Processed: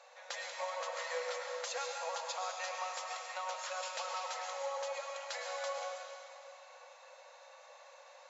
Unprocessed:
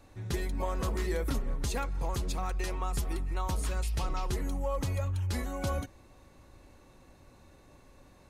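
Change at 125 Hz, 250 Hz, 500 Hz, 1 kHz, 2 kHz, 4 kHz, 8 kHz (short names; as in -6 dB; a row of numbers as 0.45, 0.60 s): under -40 dB, under -40 dB, -2.5 dB, -0.5 dB, +1.5 dB, +1.5 dB, -1.0 dB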